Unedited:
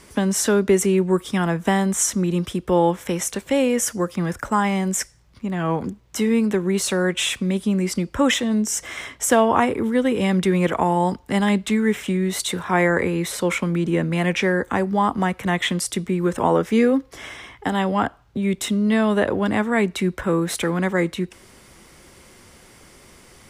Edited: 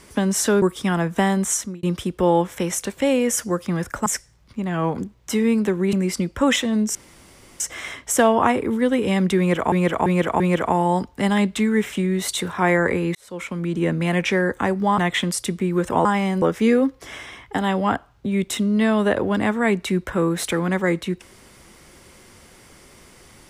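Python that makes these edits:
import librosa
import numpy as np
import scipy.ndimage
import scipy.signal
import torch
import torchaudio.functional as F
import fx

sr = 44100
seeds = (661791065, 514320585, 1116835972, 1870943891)

y = fx.edit(x, sr, fx.cut(start_s=0.62, length_s=0.49),
    fx.fade_out_span(start_s=1.95, length_s=0.37),
    fx.move(start_s=4.55, length_s=0.37, to_s=16.53),
    fx.cut(start_s=6.79, length_s=0.92),
    fx.insert_room_tone(at_s=8.73, length_s=0.65),
    fx.repeat(start_s=10.51, length_s=0.34, count=4),
    fx.fade_in_span(start_s=13.26, length_s=0.74),
    fx.cut(start_s=15.09, length_s=0.37), tone=tone)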